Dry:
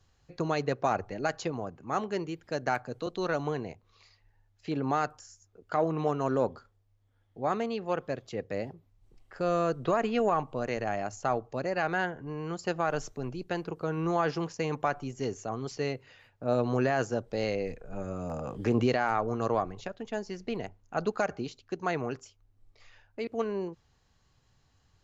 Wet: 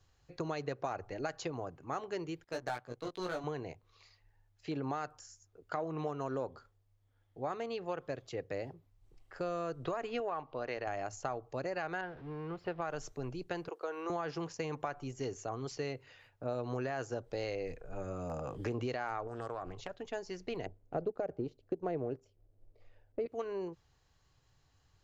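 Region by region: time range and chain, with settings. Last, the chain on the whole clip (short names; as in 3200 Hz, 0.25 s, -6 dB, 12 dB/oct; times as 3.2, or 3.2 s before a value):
2.44–3.44 power-law curve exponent 1.4 + overloaded stage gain 24 dB + doubler 17 ms -2.5 dB
10.2–10.87 steep low-pass 5300 Hz + low shelf 190 Hz -11 dB
12.01–12.82 zero-crossing step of -39.5 dBFS + air absorption 360 m + upward expander, over -40 dBFS
13.68–14.1 HPF 390 Hz 24 dB/oct + expander -49 dBFS
19.27–19.94 compressor, threshold -32 dBFS + Doppler distortion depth 0.22 ms
20.66–23.26 G.711 law mismatch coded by A + LPF 1500 Hz 6 dB/oct + resonant low shelf 760 Hz +10 dB, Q 1.5
whole clip: bell 210 Hz -14.5 dB 0.23 oct; compressor 5:1, threshold -31 dBFS; gain -2.5 dB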